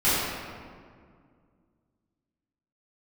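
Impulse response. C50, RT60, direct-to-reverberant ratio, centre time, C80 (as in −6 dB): −3.0 dB, 2.0 s, −13.5 dB, 130 ms, −1.0 dB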